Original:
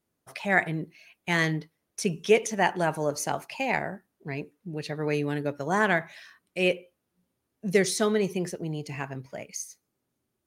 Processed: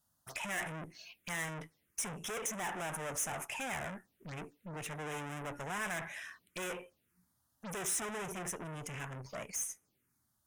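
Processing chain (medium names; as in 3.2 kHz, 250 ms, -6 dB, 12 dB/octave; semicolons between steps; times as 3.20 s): hard clipper -22 dBFS, distortion -8 dB; bass shelf 270 Hz +11.5 dB; valve stage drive 38 dB, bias 0.45; tilt shelf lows -8 dB, about 740 Hz; touch-sensitive phaser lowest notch 380 Hz, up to 4.4 kHz, full sweep at -41 dBFS; trim +1.5 dB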